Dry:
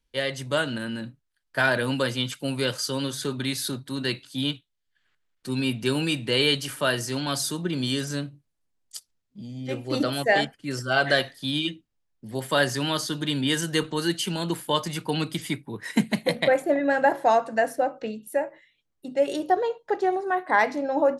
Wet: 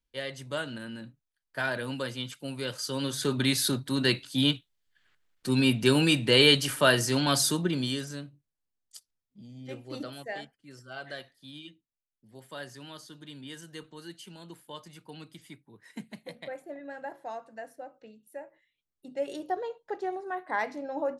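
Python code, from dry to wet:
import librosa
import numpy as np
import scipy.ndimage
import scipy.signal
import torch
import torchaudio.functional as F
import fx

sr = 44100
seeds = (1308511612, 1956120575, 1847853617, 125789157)

y = fx.gain(x, sr, db=fx.line((2.64, -8.5), (3.39, 2.5), (7.54, 2.5), (8.17, -9.5), (9.69, -9.5), (10.52, -19.0), (18.12, -19.0), (19.08, -9.5)))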